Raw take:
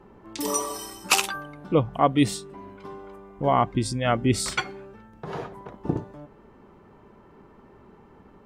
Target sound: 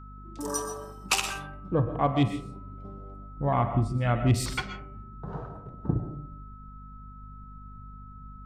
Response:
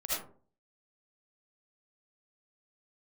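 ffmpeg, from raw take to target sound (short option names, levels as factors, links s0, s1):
-filter_complex "[0:a]asubboost=boost=3.5:cutoff=180,afwtdn=0.0178,asplit=2[s0][s1];[1:a]atrim=start_sample=2205,adelay=49[s2];[s1][s2]afir=irnorm=-1:irlink=0,volume=0.211[s3];[s0][s3]amix=inputs=2:normalize=0,aeval=exprs='val(0)+0.00631*sin(2*PI*1300*n/s)':c=same,bandreject=f=78.06:t=h:w=4,bandreject=f=156.12:t=h:w=4,bandreject=f=234.18:t=h:w=4,bandreject=f=312.24:t=h:w=4,bandreject=f=390.3:t=h:w=4,bandreject=f=468.36:t=h:w=4,bandreject=f=546.42:t=h:w=4,bandreject=f=624.48:t=h:w=4,bandreject=f=702.54:t=h:w=4,bandreject=f=780.6:t=h:w=4,bandreject=f=858.66:t=h:w=4,bandreject=f=936.72:t=h:w=4,bandreject=f=1014.78:t=h:w=4,bandreject=f=1092.84:t=h:w=4,bandreject=f=1170.9:t=h:w=4,bandreject=f=1248.96:t=h:w=4,bandreject=f=1327.02:t=h:w=4,bandreject=f=1405.08:t=h:w=4,bandreject=f=1483.14:t=h:w=4,bandreject=f=1561.2:t=h:w=4,bandreject=f=1639.26:t=h:w=4,bandreject=f=1717.32:t=h:w=4,bandreject=f=1795.38:t=h:w=4,bandreject=f=1873.44:t=h:w=4,bandreject=f=1951.5:t=h:w=4,bandreject=f=2029.56:t=h:w=4,bandreject=f=2107.62:t=h:w=4,bandreject=f=2185.68:t=h:w=4,bandreject=f=2263.74:t=h:w=4,bandreject=f=2341.8:t=h:w=4,bandreject=f=2419.86:t=h:w=4,bandreject=f=2497.92:t=h:w=4,bandreject=f=2575.98:t=h:w=4,bandreject=f=2654.04:t=h:w=4,bandreject=f=2732.1:t=h:w=4,bandreject=f=2810.16:t=h:w=4,bandreject=f=2888.22:t=h:w=4,bandreject=f=2966.28:t=h:w=4,aeval=exprs='val(0)+0.01*(sin(2*PI*50*n/s)+sin(2*PI*2*50*n/s)/2+sin(2*PI*3*50*n/s)/3+sin(2*PI*4*50*n/s)/4+sin(2*PI*5*50*n/s)/5)':c=same,volume=0.596"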